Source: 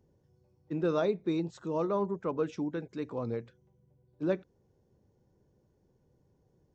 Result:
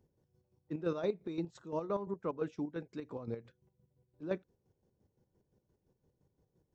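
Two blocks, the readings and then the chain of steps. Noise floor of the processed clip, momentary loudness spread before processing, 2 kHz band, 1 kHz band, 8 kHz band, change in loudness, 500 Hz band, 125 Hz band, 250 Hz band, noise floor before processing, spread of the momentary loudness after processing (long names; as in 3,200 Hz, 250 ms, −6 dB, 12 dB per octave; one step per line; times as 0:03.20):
−82 dBFS, 8 LU, −6.0 dB, −6.5 dB, can't be measured, −6.0 dB, −6.0 dB, −6.5 dB, −6.5 dB, −71 dBFS, 9 LU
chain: square-wave tremolo 5.8 Hz, depth 60%, duty 40%
level −3.5 dB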